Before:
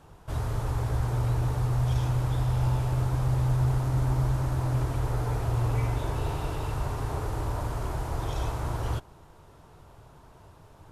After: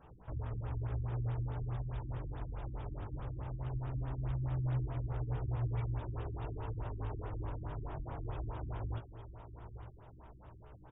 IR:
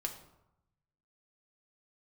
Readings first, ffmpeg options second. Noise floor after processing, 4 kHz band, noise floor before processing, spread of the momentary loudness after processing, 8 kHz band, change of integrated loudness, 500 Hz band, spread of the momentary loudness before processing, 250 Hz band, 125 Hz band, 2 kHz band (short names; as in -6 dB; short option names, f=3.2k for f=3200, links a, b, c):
-55 dBFS, under -15 dB, -53 dBFS, 15 LU, under -35 dB, -11.0 dB, -11.5 dB, 6 LU, -11.0 dB, -11.0 dB, -14.0 dB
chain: -af "acompressor=threshold=-44dB:ratio=1.5,aecho=1:1:900|1800|2700|3600:0.266|0.101|0.0384|0.0146,flanger=delay=16:depth=3.8:speed=0.19,aresample=16000,acrusher=bits=5:mode=log:mix=0:aa=0.000001,aresample=44100,afftfilt=real='re*lt(b*sr/1024,340*pow(3800/340,0.5+0.5*sin(2*PI*4.7*pts/sr)))':imag='im*lt(b*sr/1024,340*pow(3800/340,0.5+0.5*sin(2*PI*4.7*pts/sr)))':win_size=1024:overlap=0.75,volume=-1dB"